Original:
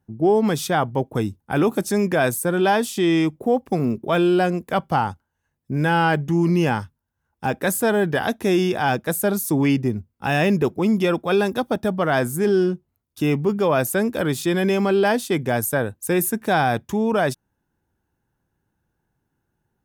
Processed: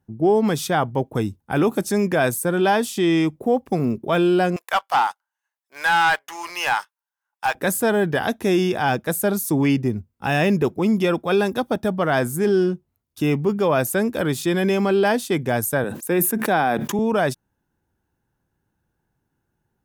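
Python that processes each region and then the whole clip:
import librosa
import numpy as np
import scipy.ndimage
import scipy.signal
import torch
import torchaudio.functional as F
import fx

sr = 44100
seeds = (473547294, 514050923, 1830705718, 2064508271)

y = fx.chain(x, sr, fx.highpass(hz=800.0, slope=24),
    fx.leveller(passes=2), at=(4.56, 7.55))
y = fx.chain(y, sr, fx.highpass(hz=170.0, slope=24),
    fx.dynamic_eq(hz=6200.0, q=0.78, threshold_db=-42.0, ratio=4.0, max_db=-8),
    fx.sustainer(db_per_s=40.0), at=(15.84, 16.99))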